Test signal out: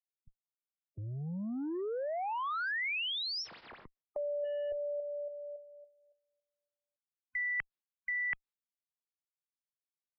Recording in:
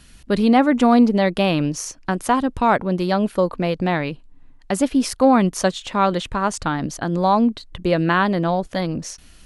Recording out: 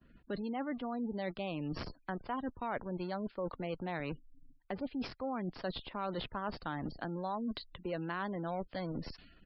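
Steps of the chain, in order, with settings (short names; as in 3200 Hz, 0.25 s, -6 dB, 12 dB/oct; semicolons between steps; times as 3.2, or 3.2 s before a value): in parallel at -10 dB: Schmitt trigger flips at -23 dBFS; on the sum: expander -40 dBFS; downsampling 11025 Hz; reverse; compressor 10:1, threshold -28 dBFS; reverse; spectral gate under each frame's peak -30 dB strong; low-pass opened by the level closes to 920 Hz, open at -30 dBFS; low shelf 210 Hz -6 dB; three-band squash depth 40%; gain -5.5 dB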